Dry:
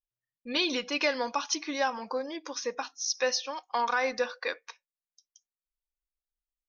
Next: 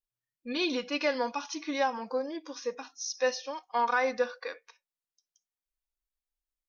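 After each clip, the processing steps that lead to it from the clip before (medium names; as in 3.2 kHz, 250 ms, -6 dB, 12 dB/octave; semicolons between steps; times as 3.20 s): harmonic-percussive split percussive -12 dB; trim +1.5 dB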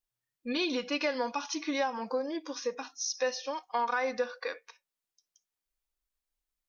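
compression 2.5:1, threshold -32 dBFS, peak gain reduction 7 dB; trim +3 dB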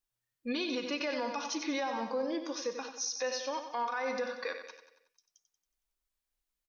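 on a send: feedback delay 92 ms, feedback 51%, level -9.5 dB; on the sum: peak limiter -25.5 dBFS, peak gain reduction 7.5 dB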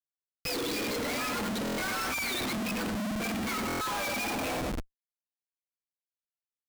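spectrum inverted on a logarithmic axis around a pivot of 1.1 kHz; Schmitt trigger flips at -48.5 dBFS; buffer glitch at 1.64/3.67 s, samples 1024, times 5; trim +6 dB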